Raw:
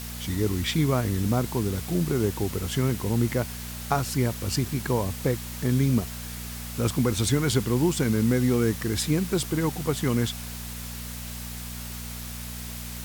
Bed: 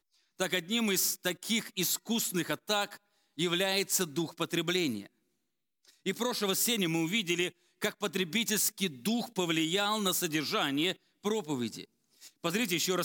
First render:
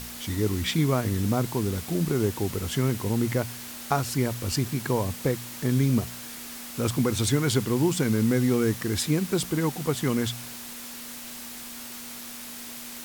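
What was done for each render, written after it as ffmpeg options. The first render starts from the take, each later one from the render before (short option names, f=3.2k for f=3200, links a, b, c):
-af "bandreject=f=60:t=h:w=4,bandreject=f=120:t=h:w=4,bandreject=f=180:t=h:w=4"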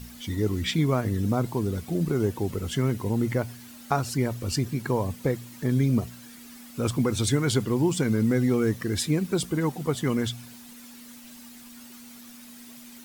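-af "afftdn=nr=11:nf=-40"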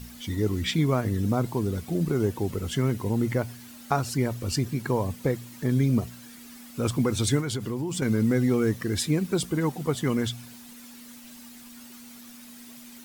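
-filter_complex "[0:a]asettb=1/sr,asplit=3[a][b][c];[a]atrim=end=7.404[d];[b]atrim=start=7.4:end=8.02,asetpts=PTS-STARTPTS,afade=t=in:d=0.004:c=qsin,afade=t=out:st=0.616:d=0.004:c=qsin,acompressor=threshold=-26dB:ratio=6:attack=3.2:release=140:knee=1:detection=peak[e];[c]atrim=start=8.016[f];[d][e]acrossfade=d=0.004:c1=hsin:c2=qsin[g];[g][f]acrossfade=d=0.004:c1=qsin:c2=hsin"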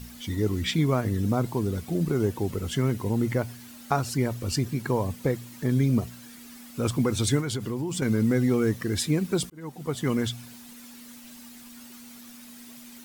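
-filter_complex "[0:a]asplit=2[a][b];[a]atrim=end=9.5,asetpts=PTS-STARTPTS,afade=t=out:st=9.496:d=0.004:c=hsin[c];[b]atrim=start=9.5,asetpts=PTS-STARTPTS,afade=t=in:d=0.6[d];[c][d]concat=n=2:v=0:a=1"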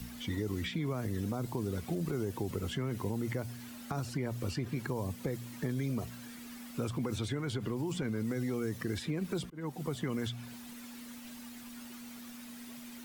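-filter_complex "[0:a]alimiter=limit=-20dB:level=0:latency=1,acrossover=split=81|400|3400[a][b][c][d];[a]acompressor=threshold=-52dB:ratio=4[e];[b]acompressor=threshold=-35dB:ratio=4[f];[c]acompressor=threshold=-40dB:ratio=4[g];[d]acompressor=threshold=-52dB:ratio=4[h];[e][f][g][h]amix=inputs=4:normalize=0"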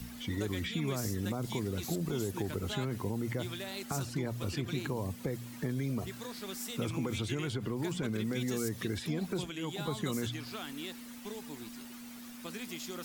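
-filter_complex "[1:a]volume=-12.5dB[a];[0:a][a]amix=inputs=2:normalize=0"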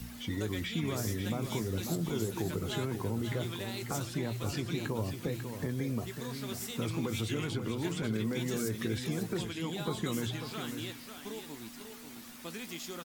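-filter_complex "[0:a]asplit=2[a][b];[b]adelay=18,volume=-11.5dB[c];[a][c]amix=inputs=2:normalize=0,aecho=1:1:544|639:0.398|0.106"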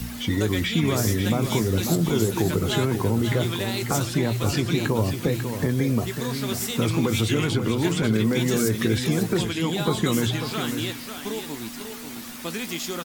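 -af "volume=11.5dB"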